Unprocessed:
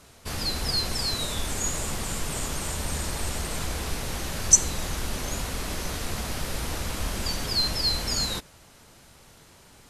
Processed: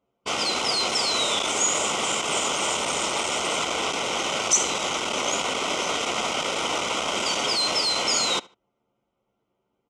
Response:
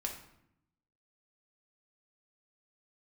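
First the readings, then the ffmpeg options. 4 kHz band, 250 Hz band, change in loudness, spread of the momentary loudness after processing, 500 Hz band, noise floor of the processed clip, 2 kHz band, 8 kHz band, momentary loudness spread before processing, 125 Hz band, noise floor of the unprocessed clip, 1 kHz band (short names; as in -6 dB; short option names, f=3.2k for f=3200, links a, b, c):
+5.5 dB, +1.5 dB, +4.0 dB, 4 LU, +8.5 dB, -77 dBFS, +8.5 dB, +1.0 dB, 9 LU, -11.5 dB, -53 dBFS, +10.5 dB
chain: -filter_complex "[0:a]anlmdn=6.31,equalizer=f=3.1k:t=o:w=0.22:g=10,acontrast=89,asoftclip=type=tanh:threshold=-17.5dB,asuperstop=centerf=1700:order=4:qfactor=2.7,highpass=410,equalizer=f=1.7k:t=q:w=4:g=9,equalizer=f=3.1k:t=q:w=4:g=-3,equalizer=f=4.4k:t=q:w=4:g=-10,lowpass=f=7.2k:w=0.5412,lowpass=f=7.2k:w=1.3066,asplit=2[a][b];[b]adelay=74,lowpass=f=4.6k:p=1,volume=-22.5dB,asplit=2[c][d];[d]adelay=74,lowpass=f=4.6k:p=1,volume=0.31[e];[c][e]amix=inputs=2:normalize=0[f];[a][f]amix=inputs=2:normalize=0,volume=5.5dB"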